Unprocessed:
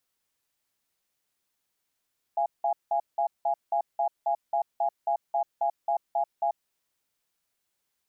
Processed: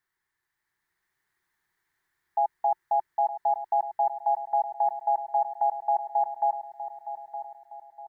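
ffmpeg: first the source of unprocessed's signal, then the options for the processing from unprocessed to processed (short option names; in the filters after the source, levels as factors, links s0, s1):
-f lavfi -i "aevalsrc='0.0531*(sin(2*PI*686*t)+sin(2*PI*824*t))*clip(min(mod(t,0.27),0.09-mod(t,0.27))/0.005,0,1)':d=4.27:s=44100"
-filter_complex "[0:a]firequalizer=gain_entry='entry(170,0);entry(250,-11);entry(360,3);entry(520,-13);entry(890,3);entry(1300,1);entry(1800,11);entry(2600,-9);entry(3800,-6);entry(5400,-9)':delay=0.05:min_phase=1,dynaudnorm=f=260:g=7:m=1.78,asplit=2[s0][s1];[s1]adelay=915,lowpass=f=910:p=1,volume=0.355,asplit=2[s2][s3];[s3]adelay=915,lowpass=f=910:p=1,volume=0.54,asplit=2[s4][s5];[s5]adelay=915,lowpass=f=910:p=1,volume=0.54,asplit=2[s6][s7];[s7]adelay=915,lowpass=f=910:p=1,volume=0.54,asplit=2[s8][s9];[s9]adelay=915,lowpass=f=910:p=1,volume=0.54,asplit=2[s10][s11];[s11]adelay=915,lowpass=f=910:p=1,volume=0.54[s12];[s2][s4][s6][s8][s10][s12]amix=inputs=6:normalize=0[s13];[s0][s13]amix=inputs=2:normalize=0"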